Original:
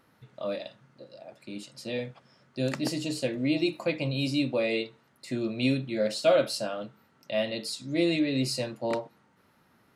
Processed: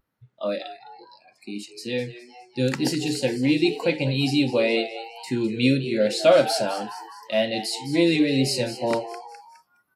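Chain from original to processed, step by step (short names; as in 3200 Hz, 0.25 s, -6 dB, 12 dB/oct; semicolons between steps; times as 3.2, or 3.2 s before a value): frequency-shifting echo 0.207 s, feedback 51%, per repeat +120 Hz, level -12.5 dB; wow and flutter 25 cents; spectral noise reduction 22 dB; gain +6 dB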